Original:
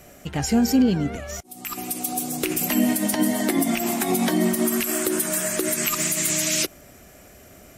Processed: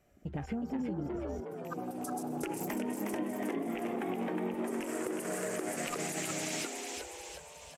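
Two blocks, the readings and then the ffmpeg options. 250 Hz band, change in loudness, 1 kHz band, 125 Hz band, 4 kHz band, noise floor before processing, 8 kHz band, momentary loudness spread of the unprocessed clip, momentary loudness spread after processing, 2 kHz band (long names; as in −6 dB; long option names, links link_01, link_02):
−14.0 dB, −14.5 dB, −9.0 dB, −12.5 dB, −15.5 dB, −48 dBFS, −17.5 dB, 9 LU, 6 LU, −12.0 dB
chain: -filter_complex "[0:a]afwtdn=0.0224,highshelf=frequency=4600:gain=-9.5,acompressor=threshold=-30dB:ratio=6,asplit=8[link_01][link_02][link_03][link_04][link_05][link_06][link_07][link_08];[link_02]adelay=363,afreqshift=93,volume=-4.5dB[link_09];[link_03]adelay=726,afreqshift=186,volume=-9.7dB[link_10];[link_04]adelay=1089,afreqshift=279,volume=-14.9dB[link_11];[link_05]adelay=1452,afreqshift=372,volume=-20.1dB[link_12];[link_06]adelay=1815,afreqshift=465,volume=-25.3dB[link_13];[link_07]adelay=2178,afreqshift=558,volume=-30.5dB[link_14];[link_08]adelay=2541,afreqshift=651,volume=-35.7dB[link_15];[link_01][link_09][link_10][link_11][link_12][link_13][link_14][link_15]amix=inputs=8:normalize=0,volume=-4.5dB"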